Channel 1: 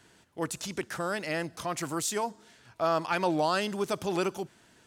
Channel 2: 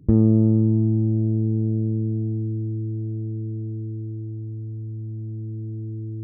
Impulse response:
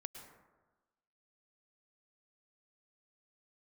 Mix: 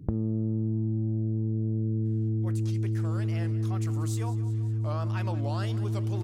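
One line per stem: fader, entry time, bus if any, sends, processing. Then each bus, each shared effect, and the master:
-3.5 dB, 2.05 s, no send, echo send -16.5 dB, wow and flutter 140 cents; flange 1.2 Hz, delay 2.4 ms, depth 4.9 ms, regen +81%
+1.5 dB, 0.00 s, no send, no echo send, HPF 45 Hz 6 dB/oct; low shelf 150 Hz +5 dB; compressor, threshold -21 dBFS, peak gain reduction 10.5 dB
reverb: off
echo: feedback echo 0.185 s, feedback 58%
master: compressor 4:1, threshold -26 dBFS, peak gain reduction 8 dB

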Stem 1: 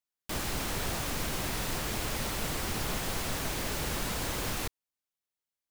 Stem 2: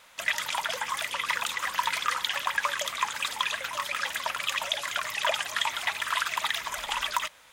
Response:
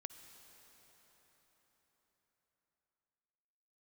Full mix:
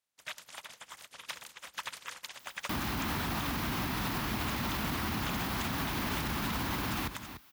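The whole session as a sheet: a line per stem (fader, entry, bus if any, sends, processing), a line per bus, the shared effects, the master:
+2.5 dB, 2.40 s, no send, echo send -14.5 dB, graphic EQ 250/500/1000/8000 Hz +7/-10/+5/-12 dB; fast leveller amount 50%
-7.0 dB, 0.00 s, no send, no echo send, spectral limiter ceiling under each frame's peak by 18 dB; upward expander 2.5:1, over -41 dBFS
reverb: off
echo: echo 0.294 s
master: HPF 48 Hz 24 dB/oct; limiter -24.5 dBFS, peak gain reduction 8 dB

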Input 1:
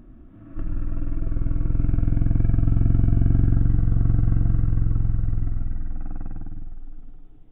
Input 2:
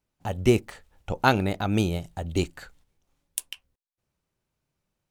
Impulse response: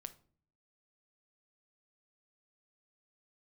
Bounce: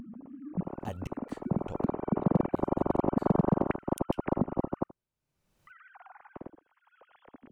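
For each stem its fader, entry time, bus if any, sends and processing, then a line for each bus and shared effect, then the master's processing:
-17.5 dB, 0.00 s, muted 4.84–5.67, no send, echo send -21 dB, sine-wave speech; low shelf 280 Hz +12 dB
1.62 s -8.5 dB -> 2.1 s -20 dB -> 3.01 s -20 dB -> 3.42 s -10.5 dB, 0.60 s, no send, no echo send, flipped gate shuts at -16 dBFS, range -38 dB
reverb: off
echo: echo 79 ms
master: upward compressor, threshold -42 dBFS; overloaded stage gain 16 dB

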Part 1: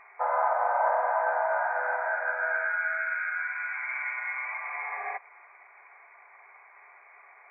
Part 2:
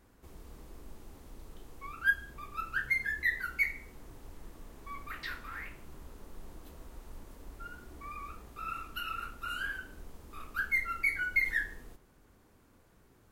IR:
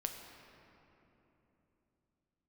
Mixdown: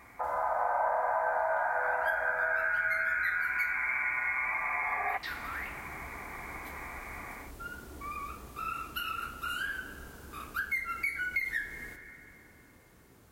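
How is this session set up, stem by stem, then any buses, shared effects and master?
-3.0 dB, 0.00 s, no send, AGC gain up to 13 dB
+1.0 dB, 0.00 s, send -5.5 dB, HPF 53 Hz; high shelf 4700 Hz +4 dB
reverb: on, RT60 3.3 s, pre-delay 7 ms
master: compressor 2.5:1, threshold -33 dBFS, peak gain reduction 13.5 dB

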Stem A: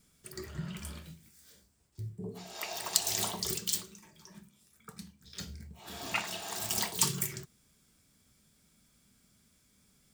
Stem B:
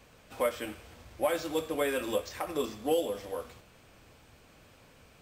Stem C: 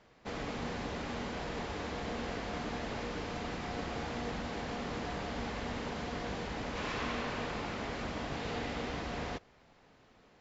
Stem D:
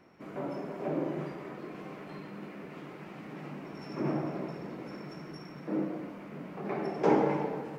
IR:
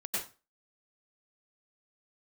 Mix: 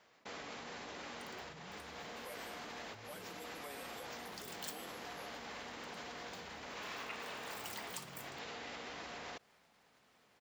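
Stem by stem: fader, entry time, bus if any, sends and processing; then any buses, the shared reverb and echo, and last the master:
0.0 dB, 0.95 s, muted 3.44–4.27, no send, tone controls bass +7 dB, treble -13 dB
-7.0 dB, 1.85 s, no send, cascading phaser falling 0.57 Hz
+2.0 dB, 0.00 s, no send, dry
-15.0 dB, 0.00 s, no send, dry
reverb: off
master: high shelf 2300 Hz -10.5 dB; level quantiser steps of 22 dB; tilt +4.5 dB/oct

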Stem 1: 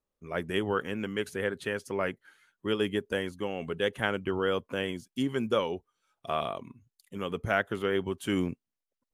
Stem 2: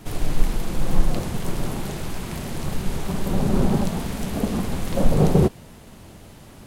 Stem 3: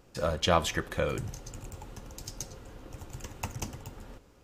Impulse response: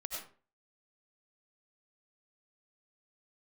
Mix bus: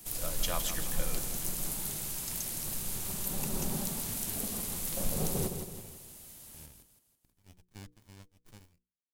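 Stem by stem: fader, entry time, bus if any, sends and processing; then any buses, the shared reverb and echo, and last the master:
+0.5 dB, 0.25 s, no send, no echo send, steep high-pass 2000 Hz 36 dB/oct; running maximum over 65 samples
-3.0 dB, 0.00 s, no send, echo send -7 dB, high shelf 6100 Hz +9 dB
0.0 dB, 0.00 s, no send, echo send -10.5 dB, dry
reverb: off
echo: feedback echo 0.164 s, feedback 45%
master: pre-emphasis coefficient 0.8; notches 60/120/180/240/300/360/420/480 Hz

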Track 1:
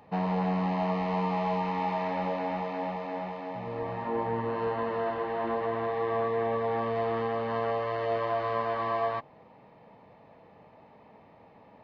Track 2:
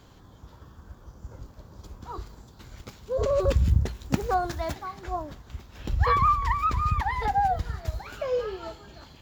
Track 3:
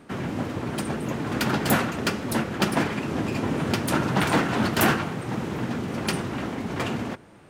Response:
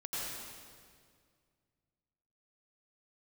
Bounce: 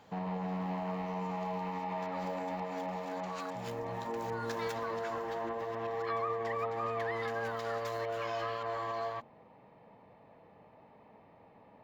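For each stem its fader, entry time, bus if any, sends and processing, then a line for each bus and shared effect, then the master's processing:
-3.5 dB, 0.00 s, no bus, no send, limiter -25.5 dBFS, peak gain reduction 7.5 dB
-4.5 dB, 0.00 s, bus A, no send, AGC gain up to 7 dB; steep high-pass 1200 Hz 48 dB/oct
off
bus A: 0.0 dB, auto swell 0.179 s; compressor 6:1, threshold -38 dBFS, peak gain reduction 16.5 dB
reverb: off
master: high shelf 5100 Hz -7.5 dB; de-hum 75.95 Hz, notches 3

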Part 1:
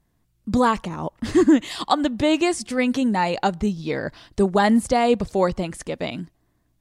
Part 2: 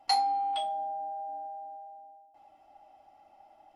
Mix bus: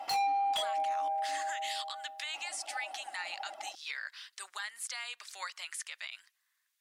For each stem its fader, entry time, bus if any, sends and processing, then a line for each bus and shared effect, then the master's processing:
0.0 dB, 0.00 s, no send, HPF 1500 Hz 24 dB/oct; compressor 6:1, threshold -35 dBFS, peak gain reduction 12.5 dB
-2.0 dB, 0.00 s, no send, reverb removal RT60 1.7 s; low shelf 230 Hz -10 dB; overdrive pedal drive 28 dB, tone 6700 Hz, clips at -14 dBFS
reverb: off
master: limiter -27 dBFS, peak gain reduction 10 dB

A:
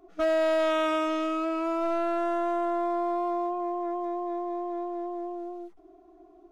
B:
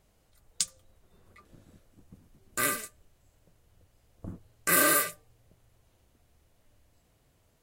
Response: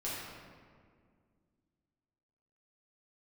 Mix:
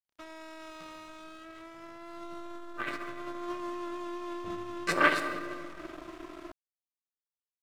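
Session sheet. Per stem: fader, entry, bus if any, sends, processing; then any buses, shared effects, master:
1.98 s -14 dB -> 2.59 s -1 dB, 0.00 s, send -22 dB, per-bin compression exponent 0.4; bell 700 Hz -12 dB 0.35 oct
+2.5 dB, 0.20 s, send -3.5 dB, LFO low-pass saw up 3.6 Hz 590–5700 Hz; upward expander 1.5:1, over -38 dBFS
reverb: on, RT60 2.0 s, pre-delay 5 ms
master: crossover distortion -43.5 dBFS; core saturation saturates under 780 Hz

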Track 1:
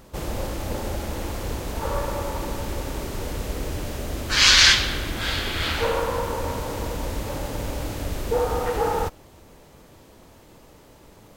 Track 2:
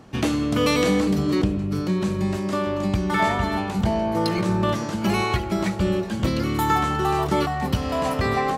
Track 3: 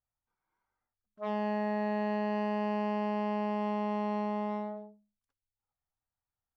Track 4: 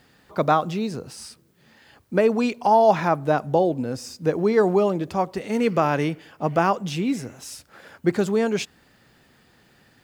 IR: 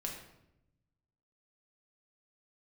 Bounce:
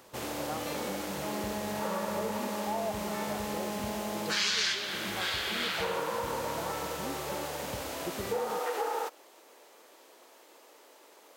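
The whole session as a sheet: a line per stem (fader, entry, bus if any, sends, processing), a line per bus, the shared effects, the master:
-2.0 dB, 0.00 s, no send, HPF 340 Hz 24 dB/oct; low shelf 470 Hz -6 dB
-19.5 dB, 0.00 s, no send, dry
-4.5 dB, 0.00 s, no send, dry
-18.5 dB, 0.00 s, no send, spectral expander 1.5:1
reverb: off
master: compressor 4:1, threshold -29 dBFS, peak gain reduction 13.5 dB

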